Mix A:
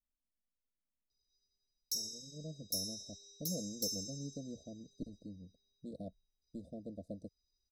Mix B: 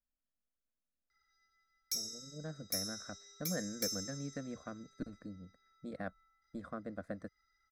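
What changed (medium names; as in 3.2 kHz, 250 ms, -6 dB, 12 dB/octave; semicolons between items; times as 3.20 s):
speech: add peaking EQ 1.5 kHz +10 dB 2.1 oct; master: remove Chebyshev band-stop 680–3700 Hz, order 5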